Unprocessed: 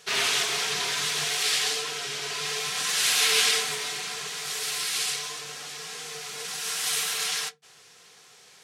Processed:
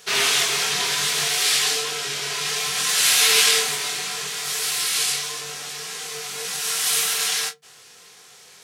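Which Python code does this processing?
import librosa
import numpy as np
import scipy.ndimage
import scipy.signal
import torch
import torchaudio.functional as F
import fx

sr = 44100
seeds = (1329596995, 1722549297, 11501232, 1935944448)

y = fx.high_shelf(x, sr, hz=11000.0, db=8.0)
y = fx.room_early_taps(y, sr, ms=(22, 42), db=(-6.5, -16.0))
y = y * 10.0 ** (3.5 / 20.0)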